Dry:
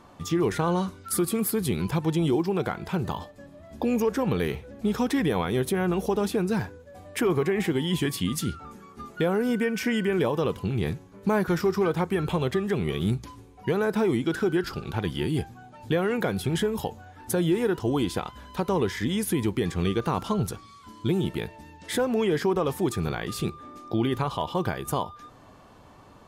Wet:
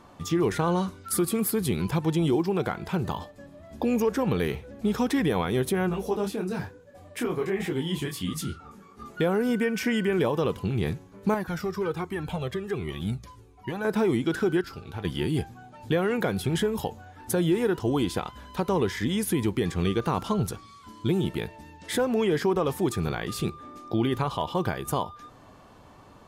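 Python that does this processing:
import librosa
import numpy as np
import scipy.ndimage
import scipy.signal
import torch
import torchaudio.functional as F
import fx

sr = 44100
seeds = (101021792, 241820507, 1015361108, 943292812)

y = fx.detune_double(x, sr, cents=fx.line((5.88, 35.0), (9.04, 54.0)), at=(5.88, 9.04), fade=0.02)
y = fx.comb_cascade(y, sr, direction='falling', hz=1.3, at=(11.34, 13.85))
y = fx.comb_fb(y, sr, f0_hz=90.0, decay_s=0.18, harmonics='odd', damping=0.0, mix_pct=70, at=(14.61, 15.05))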